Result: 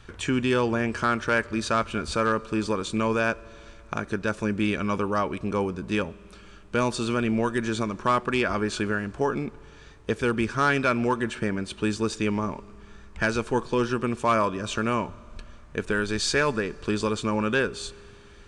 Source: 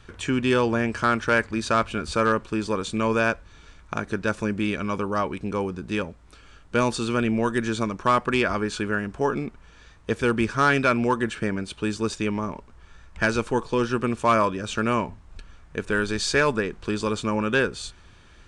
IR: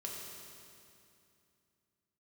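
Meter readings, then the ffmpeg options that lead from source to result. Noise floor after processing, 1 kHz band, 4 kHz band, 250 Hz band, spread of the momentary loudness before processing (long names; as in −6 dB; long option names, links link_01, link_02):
−48 dBFS, −2.0 dB, −1.0 dB, −1.0 dB, 9 LU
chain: -filter_complex "[0:a]alimiter=limit=-14.5dB:level=0:latency=1:release=325,asplit=2[link_01][link_02];[1:a]atrim=start_sample=2205[link_03];[link_02][link_03]afir=irnorm=-1:irlink=0,volume=-18.5dB[link_04];[link_01][link_04]amix=inputs=2:normalize=0"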